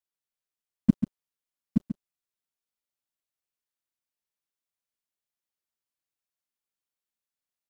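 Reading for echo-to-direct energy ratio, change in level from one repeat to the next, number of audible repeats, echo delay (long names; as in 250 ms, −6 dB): −3.5 dB, repeats not evenly spaced, 3, 139 ms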